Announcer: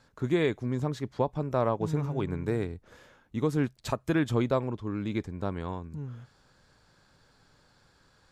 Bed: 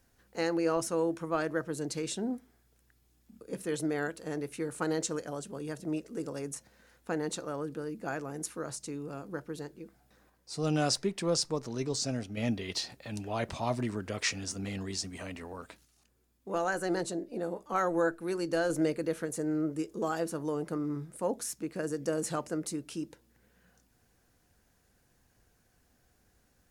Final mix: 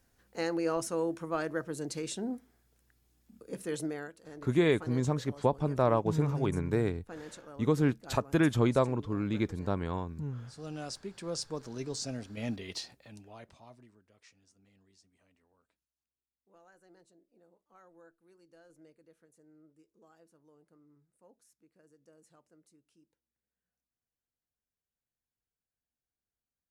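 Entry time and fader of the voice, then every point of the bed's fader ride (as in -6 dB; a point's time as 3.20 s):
4.25 s, +0.5 dB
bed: 3.82 s -2 dB
4.13 s -12 dB
10.94 s -12 dB
11.60 s -4.5 dB
12.75 s -4.5 dB
14.06 s -30 dB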